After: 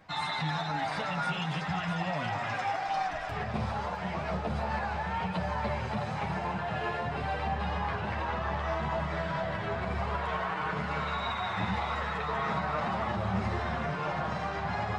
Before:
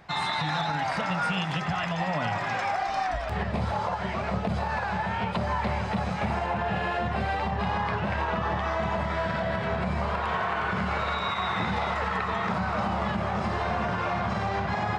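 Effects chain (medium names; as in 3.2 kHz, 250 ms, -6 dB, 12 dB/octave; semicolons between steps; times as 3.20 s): two-band feedback delay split 830 Hz, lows 180 ms, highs 660 ms, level -9 dB; chorus voices 4, 0.29 Hz, delay 10 ms, depth 3.7 ms; trim -2 dB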